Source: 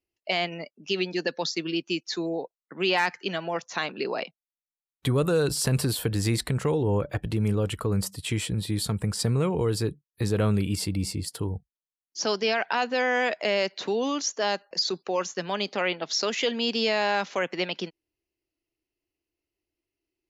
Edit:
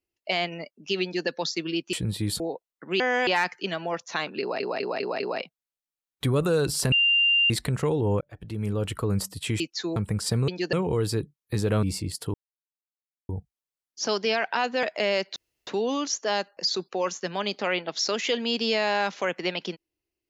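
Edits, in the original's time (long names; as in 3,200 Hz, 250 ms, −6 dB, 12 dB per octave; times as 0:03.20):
0:01.03–0:01.28: duplicate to 0:09.41
0:01.93–0:02.29: swap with 0:08.42–0:08.89
0:04.02: stutter 0.20 s, 5 plays
0:05.74–0:06.32: beep over 2,790 Hz −17.5 dBFS
0:07.03–0:07.74: fade in linear
0:10.51–0:10.96: remove
0:11.47: splice in silence 0.95 s
0:13.01–0:13.28: move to 0:02.89
0:13.81: splice in room tone 0.31 s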